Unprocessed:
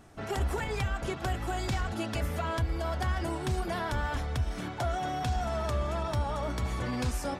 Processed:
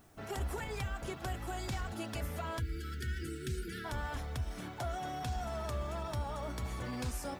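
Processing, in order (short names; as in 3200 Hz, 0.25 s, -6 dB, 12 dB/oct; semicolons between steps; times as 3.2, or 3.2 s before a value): spectral delete 2.59–3.85, 510–1300 Hz; requantised 12-bit, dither triangular; high shelf 9800 Hz +9 dB; gain -7 dB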